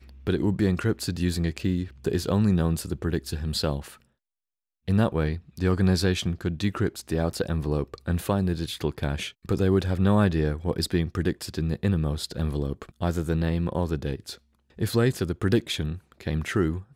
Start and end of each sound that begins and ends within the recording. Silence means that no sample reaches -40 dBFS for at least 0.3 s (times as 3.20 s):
4.88–14.35 s